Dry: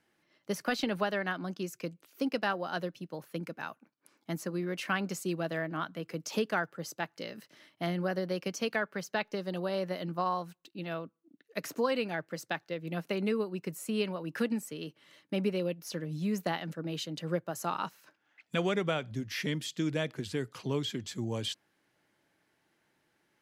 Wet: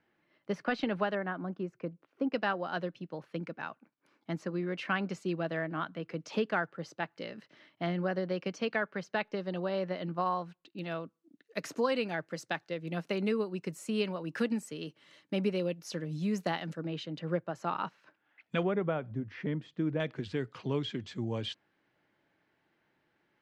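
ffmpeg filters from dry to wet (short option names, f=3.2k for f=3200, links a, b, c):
-af "asetnsamples=n=441:p=0,asendcmd='1.15 lowpass f 1400;2.33 lowpass f 3500;10.79 lowpass f 8000;16.87 lowpass f 3000;18.63 lowpass f 1300;20 lowpass f 3300',lowpass=2.8k"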